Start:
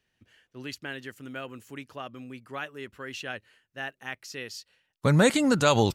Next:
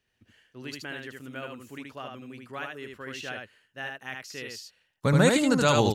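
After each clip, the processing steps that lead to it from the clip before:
single-tap delay 76 ms −3.5 dB
level −1.5 dB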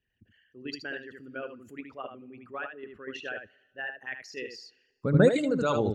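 spectral envelope exaggerated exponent 2
in parallel at +3 dB: output level in coarse steps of 19 dB
on the sum: coupled-rooms reverb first 0.2 s, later 1.7 s, from −18 dB, DRR 17 dB
level −6 dB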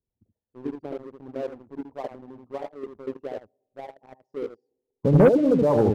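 elliptic low-pass filter 950 Hz, stop band 40 dB
leveller curve on the samples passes 2
level +1 dB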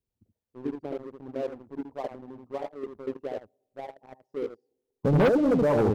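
soft clipping −17 dBFS, distortion −12 dB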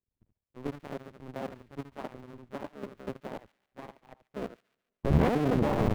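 sub-harmonics by changed cycles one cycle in 2, muted
bass and treble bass +8 dB, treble −10 dB
delay with a high-pass on its return 142 ms, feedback 38%, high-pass 1,900 Hz, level −18 dB
level −4 dB

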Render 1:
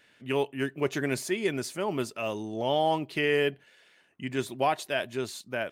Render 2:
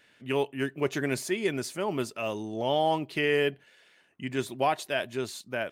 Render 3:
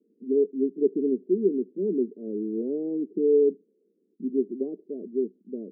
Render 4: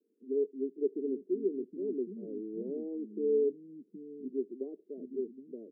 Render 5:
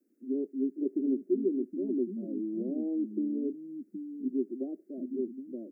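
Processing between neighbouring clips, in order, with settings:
no processing that can be heard
Chebyshev band-pass filter 190–450 Hz, order 4; level +7 dB
parametric band 100 Hz −5 dB 1.4 octaves; multiband delay without the direct sound highs, lows 770 ms, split 230 Hz; level −7 dB
phaser with its sweep stopped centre 660 Hz, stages 8; level +8.5 dB

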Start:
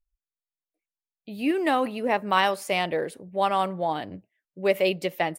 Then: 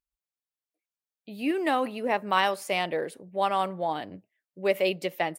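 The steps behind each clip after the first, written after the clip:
high-pass filter 150 Hz 6 dB per octave
level −2 dB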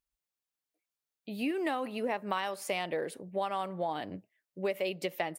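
downward compressor, threshold −31 dBFS, peak gain reduction 13 dB
level +1.5 dB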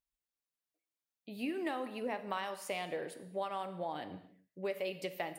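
reverb whose tail is shaped and stops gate 310 ms falling, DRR 9.5 dB
level −5.5 dB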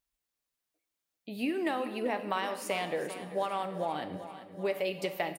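repeating echo 391 ms, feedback 59%, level −13 dB
level +5.5 dB

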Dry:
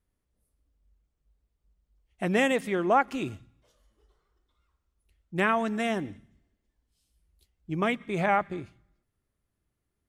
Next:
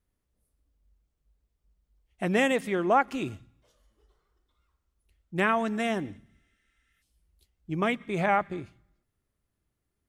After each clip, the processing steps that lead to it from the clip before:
healed spectral selection 0:06.28–0:07.00, 1,200–9,800 Hz before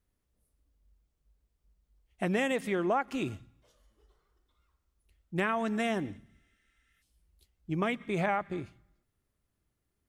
downward compressor 3 to 1, threshold −27 dBFS, peak gain reduction 8 dB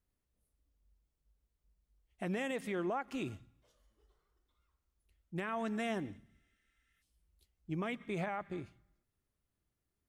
brickwall limiter −22.5 dBFS, peak gain reduction 5.5 dB
level −5.5 dB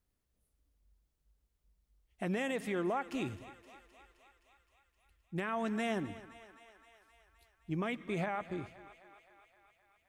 feedback echo with a high-pass in the loop 260 ms, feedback 71%, high-pass 380 Hz, level −15.5 dB
level +2 dB

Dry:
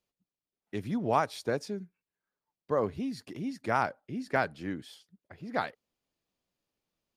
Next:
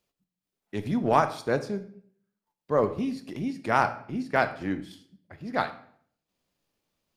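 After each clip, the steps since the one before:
transient designer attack −5 dB, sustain −9 dB
on a send at −9 dB: convolution reverb RT60 0.60 s, pre-delay 3 ms
on the sum: level +6.5 dB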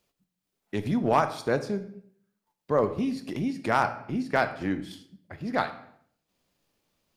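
in parallel at +2 dB: downward compressor, threshold −33 dBFS, peak gain reduction 17 dB
on the sum: hard clipping −8.5 dBFS, distortion −26 dB
level −2.5 dB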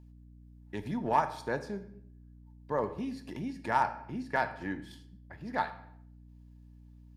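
mains hum 60 Hz, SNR 15 dB
hollow resonant body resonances 910/1,700 Hz, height 14 dB, ringing for 50 ms
level −8.5 dB

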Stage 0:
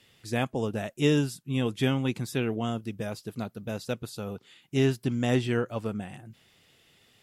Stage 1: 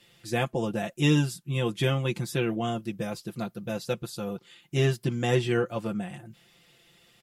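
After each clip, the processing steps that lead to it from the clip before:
comb filter 5.8 ms, depth 78%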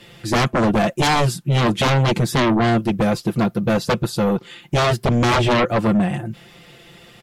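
high-shelf EQ 2,800 Hz −9.5 dB
sine wavefolder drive 14 dB, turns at −13 dBFS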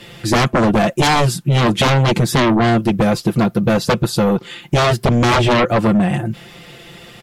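downward compressor, threshold −18 dBFS, peak gain reduction 4 dB
level +6.5 dB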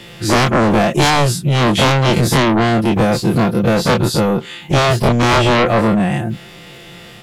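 every bin's largest magnitude spread in time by 60 ms
surface crackle 11 per second −32 dBFS
level −2 dB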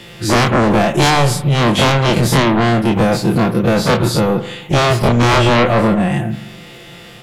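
convolution reverb RT60 1.0 s, pre-delay 42 ms, DRR 11 dB

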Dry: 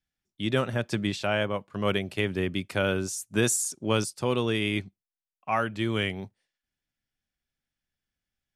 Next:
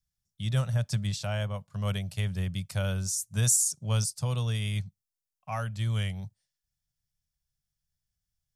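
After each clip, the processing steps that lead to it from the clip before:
drawn EQ curve 150 Hz 0 dB, 320 Hz −29 dB, 590 Hz −13 dB, 2,500 Hz −16 dB, 5,500 Hz −2 dB
level +5.5 dB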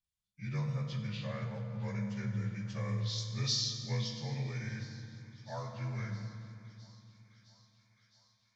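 partials spread apart or drawn together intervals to 85%
feedback echo with a high-pass in the loop 662 ms, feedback 75%, high-pass 570 Hz, level −21 dB
convolution reverb RT60 2.7 s, pre-delay 5 ms, DRR 3 dB
level −8 dB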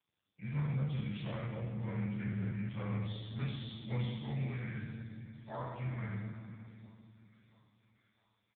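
peak hold with a decay on every bin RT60 1.15 s
repeating echo 176 ms, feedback 60%, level −15.5 dB
AMR narrowband 5.15 kbit/s 8,000 Hz

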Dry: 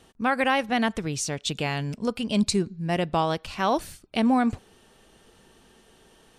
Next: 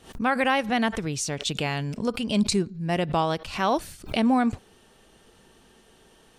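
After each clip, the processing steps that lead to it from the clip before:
background raised ahead of every attack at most 140 dB per second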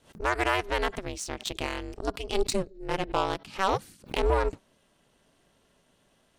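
harmonic generator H 7 −22 dB, 8 −40 dB, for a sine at −10.5 dBFS
ring modulation 190 Hz

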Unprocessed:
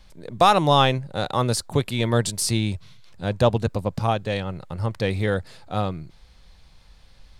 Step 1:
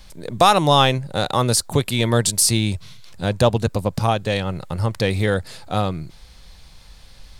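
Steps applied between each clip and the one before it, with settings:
high-shelf EQ 5,300 Hz +8.5 dB
in parallel at 0 dB: downward compressor, threshold −26 dBFS, peak gain reduction 14.5 dB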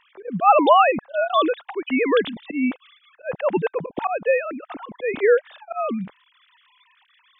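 three sine waves on the formant tracks
volume swells 131 ms
level +1 dB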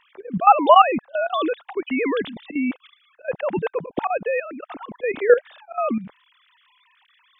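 output level in coarse steps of 13 dB
level +4.5 dB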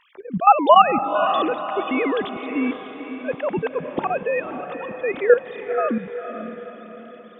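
feedback delay with all-pass diffusion 504 ms, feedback 48%, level −9 dB

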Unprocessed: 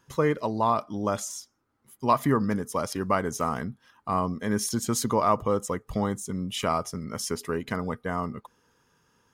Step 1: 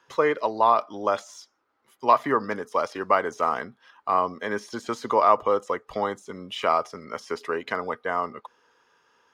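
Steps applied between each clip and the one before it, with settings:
de-essing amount 85%
three-way crossover with the lows and the highs turned down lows −21 dB, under 370 Hz, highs −17 dB, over 5,300 Hz
level +5.5 dB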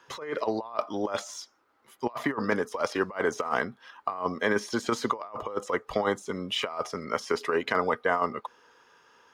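compressor whose output falls as the input rises −27 dBFS, ratio −0.5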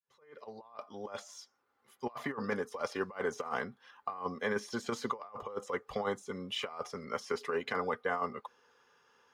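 fade in at the beginning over 1.78 s
notch comb filter 320 Hz
level −6.5 dB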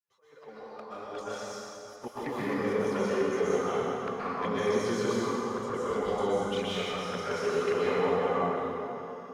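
flanger swept by the level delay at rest 10.6 ms, full sweep at −32 dBFS
dense smooth reverb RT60 3.3 s, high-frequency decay 0.65×, pre-delay 110 ms, DRR −9.5 dB

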